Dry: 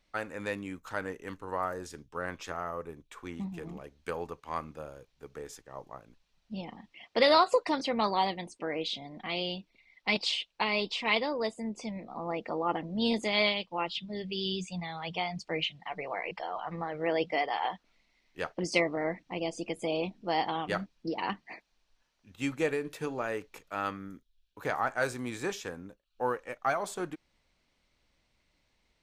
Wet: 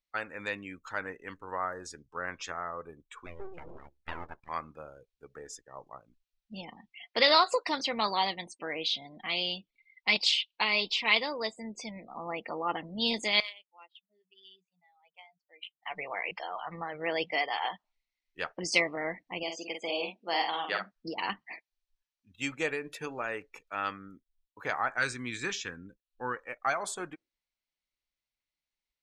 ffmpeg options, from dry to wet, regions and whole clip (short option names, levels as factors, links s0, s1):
-filter_complex "[0:a]asettb=1/sr,asplit=3[s0][s1][s2];[s0]atrim=end=3.264[s3];[s1]atrim=start=3.26:end=4.49,asetpts=PTS-STARTPTS,afade=t=in:d=0.004:c=qsin,afade=t=out:st=1.226:d=0.004:c=qsin,lowpass=f=2500:p=1,equalizer=f=210:t=o:w=0.98:g=4,aeval=exprs='abs(val(0))':c=same[s4];[s2]atrim=start=4.486[s5];[s3][s4]acrossfade=d=0.004:c1=hsin:c2=qsin[s6];[s6][s5]acrossfade=d=0.004:c1=qsin:c2=hsin,asettb=1/sr,asplit=3[s7][s8][s9];[s7]atrim=end=13.404[s10];[s8]atrim=start=13.4:end=15.83,asetpts=PTS-STARTPTS,afade=t=in:d=0.004:c=qsin,afade=t=out:st=2.426:d=0.004:c=qsin,aderivative,adynamicsmooth=sensitivity=3:basefreq=1100[s11];[s9]atrim=start=15.826[s12];[s10][s11]acrossfade=d=0.004:c1=hsin:c2=qsin[s13];[s13][s12]acrossfade=d=0.004:c1=qsin:c2=hsin,asettb=1/sr,asplit=3[s14][s15][s16];[s14]atrim=end=19.434[s17];[s15]atrim=start=19.43:end=20.92,asetpts=PTS-STARTPTS,afade=t=in:d=0.004:c=qsin,afade=t=out:st=1.486:d=0.004:c=qsin,highpass=310,lowpass=6300,asplit=2[s18][s19];[s19]adelay=48,volume=0.562[s20];[s18][s20]amix=inputs=2:normalize=0,atrim=end_sample=65709[s21];[s16]atrim=start=20.916[s22];[s17][s21]acrossfade=d=0.004:c1=hsin:c2=qsin[s23];[s23][s22]acrossfade=d=0.004:c1=qsin:c2=hsin,asettb=1/sr,asplit=3[s24][s25][s26];[s24]atrim=end=24.984[s27];[s25]atrim=start=24.98:end=26.36,asetpts=PTS-STARTPTS,afade=t=in:d=0.004:c=qsin,afade=t=out:st=1.376:d=0.004:c=qsin,lowpass=f=3900:p=1,equalizer=f=660:w=1.2:g=-14,acontrast=23[s28];[s26]atrim=start=26.356[s29];[s27][s28]acrossfade=d=0.004:c1=hsin:c2=qsin[s30];[s30][s29]acrossfade=d=0.004:c1=qsin:c2=hsin,afftdn=nr=22:nf=-51,tiltshelf=f=1100:g=-6"